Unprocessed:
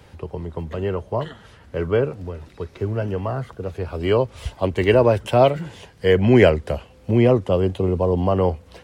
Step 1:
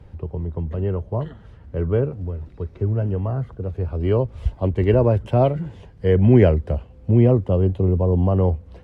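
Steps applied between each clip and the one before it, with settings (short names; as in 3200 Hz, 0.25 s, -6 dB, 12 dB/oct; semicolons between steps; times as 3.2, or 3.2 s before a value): tilt -3.5 dB/oct; gain -6.5 dB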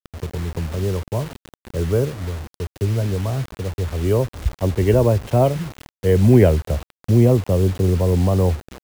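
bit-crush 6-bit; gain +1 dB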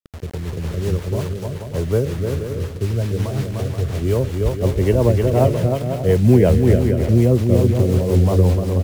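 on a send: bouncing-ball echo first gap 0.3 s, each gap 0.6×, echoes 5; on the sum: rotary speaker horn 5.5 Hz; gain +1 dB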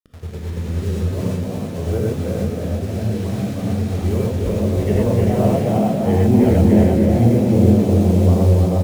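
frequency-shifting echo 0.332 s, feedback 45%, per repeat +85 Hz, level -5 dB; non-linear reverb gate 0.14 s rising, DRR -2 dB; gain -6.5 dB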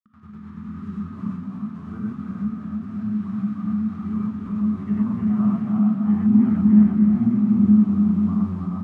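double band-pass 510 Hz, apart 2.5 oct; gain +3 dB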